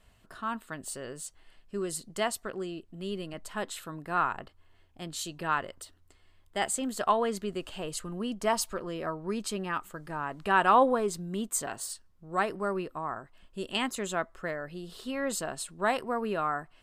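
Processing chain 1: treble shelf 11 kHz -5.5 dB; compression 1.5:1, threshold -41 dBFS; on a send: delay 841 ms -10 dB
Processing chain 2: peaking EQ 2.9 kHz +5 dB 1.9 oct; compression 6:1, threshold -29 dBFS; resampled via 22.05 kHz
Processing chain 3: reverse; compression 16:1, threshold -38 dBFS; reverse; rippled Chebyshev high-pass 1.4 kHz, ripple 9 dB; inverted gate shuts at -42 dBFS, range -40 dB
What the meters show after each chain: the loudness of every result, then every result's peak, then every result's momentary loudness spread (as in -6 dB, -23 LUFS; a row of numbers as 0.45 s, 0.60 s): -37.5 LUFS, -35.5 LUFS, -59.5 LUFS; -18.5 dBFS, -14.5 dBFS, -38.5 dBFS; 9 LU, 7 LU, 9 LU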